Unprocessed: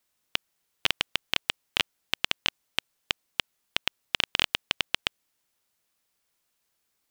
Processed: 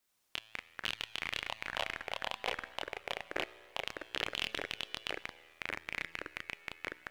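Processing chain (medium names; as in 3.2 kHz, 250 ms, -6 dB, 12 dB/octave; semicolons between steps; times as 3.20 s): 1.49–3.77 s: high-order bell 750 Hz +13.5 dB 1.3 oct; peak limiter -11.5 dBFS, peak gain reduction 11 dB; feedback comb 110 Hz, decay 1.7 s, mix 60%; chorus voices 2, 0.61 Hz, delay 27 ms, depth 1.5 ms; ever faster or slower copies 81 ms, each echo -5 st, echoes 2; trim +8 dB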